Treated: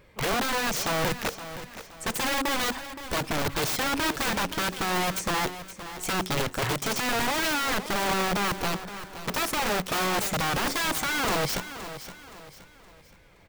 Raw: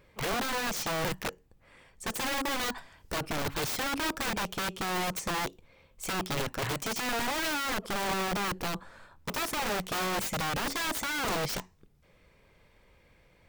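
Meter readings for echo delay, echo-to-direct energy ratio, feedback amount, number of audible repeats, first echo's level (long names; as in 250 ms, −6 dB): 520 ms, −12.0 dB, 38%, 3, −12.5 dB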